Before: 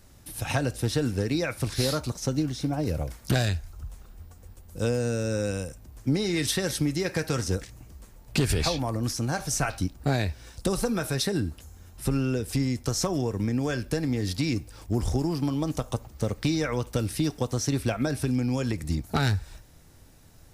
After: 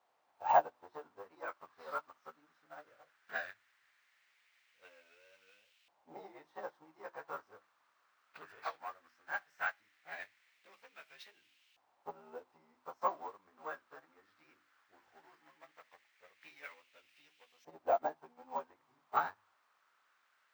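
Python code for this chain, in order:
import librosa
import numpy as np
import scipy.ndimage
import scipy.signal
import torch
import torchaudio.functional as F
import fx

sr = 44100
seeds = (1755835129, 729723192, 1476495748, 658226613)

y = fx.frame_reverse(x, sr, frame_ms=40.0)
y = fx.highpass(y, sr, hz=79.0, slope=6)
y = fx.peak_eq(y, sr, hz=800.0, db=12.5, octaves=2.2)
y = fx.hum_notches(y, sr, base_hz=50, count=7)
y = fx.vibrato(y, sr, rate_hz=2.5, depth_cents=51.0)
y = fx.quant_dither(y, sr, seeds[0], bits=6, dither='triangular')
y = 10.0 ** (-18.0 / 20.0) * np.tanh(y / 10.0 ** (-18.0 / 20.0))
y = fx.filter_lfo_bandpass(y, sr, shape='saw_up', hz=0.17, low_hz=770.0, high_hz=2800.0, q=2.8)
y = np.repeat(scipy.signal.resample_poly(y, 1, 2), 2)[:len(y)]
y = fx.upward_expand(y, sr, threshold_db=-46.0, expansion=2.5)
y = F.gain(torch.from_numpy(y), 5.5).numpy()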